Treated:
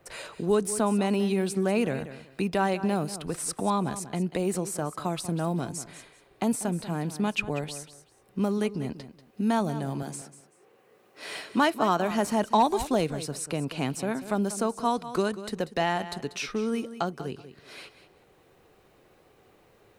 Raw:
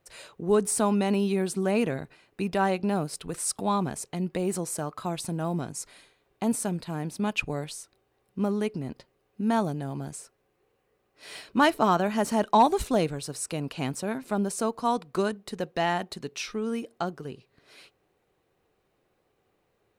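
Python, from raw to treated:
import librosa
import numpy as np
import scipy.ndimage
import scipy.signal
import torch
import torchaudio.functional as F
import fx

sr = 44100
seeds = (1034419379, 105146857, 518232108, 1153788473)

y = fx.highpass(x, sr, hz=170.0, slope=12, at=(10.02, 12.11))
y = fx.echo_feedback(y, sr, ms=189, feedback_pct=17, wet_db=-15)
y = fx.band_squash(y, sr, depth_pct=40)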